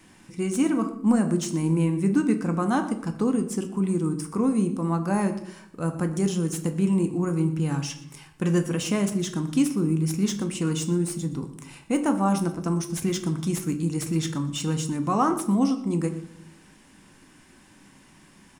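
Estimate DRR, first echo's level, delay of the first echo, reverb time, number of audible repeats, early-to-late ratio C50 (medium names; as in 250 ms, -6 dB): 5.5 dB, -17.5 dB, 121 ms, 0.70 s, 2, 11.0 dB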